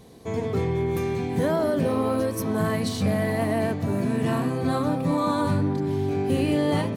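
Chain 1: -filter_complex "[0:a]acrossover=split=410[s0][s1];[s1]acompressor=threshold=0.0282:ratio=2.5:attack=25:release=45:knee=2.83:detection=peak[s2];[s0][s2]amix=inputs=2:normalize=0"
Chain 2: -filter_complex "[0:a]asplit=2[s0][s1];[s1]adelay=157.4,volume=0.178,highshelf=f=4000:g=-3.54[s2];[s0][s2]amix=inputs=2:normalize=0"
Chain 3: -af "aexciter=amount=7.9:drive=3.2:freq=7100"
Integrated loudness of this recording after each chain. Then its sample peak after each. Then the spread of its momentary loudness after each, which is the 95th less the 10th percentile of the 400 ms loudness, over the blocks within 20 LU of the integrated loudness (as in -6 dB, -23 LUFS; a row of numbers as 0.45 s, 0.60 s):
-25.5 LUFS, -25.0 LUFS, -23.5 LUFS; -11.5 dBFS, -10.5 dBFS, -3.5 dBFS; 3 LU, 3 LU, 5 LU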